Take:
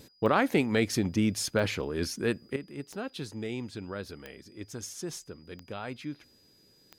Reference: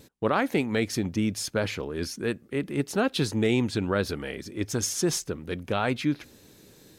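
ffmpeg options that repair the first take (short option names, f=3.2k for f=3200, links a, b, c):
-af "adeclick=t=4,bandreject=f=4.9k:w=30,asetnsamples=n=441:p=0,asendcmd='2.56 volume volume 12dB',volume=0dB"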